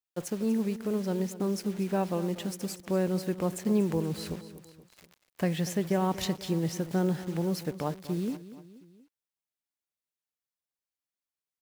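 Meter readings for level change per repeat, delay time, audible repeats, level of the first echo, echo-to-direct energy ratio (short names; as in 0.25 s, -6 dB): -5.5 dB, 0.239 s, 3, -15.0 dB, -13.5 dB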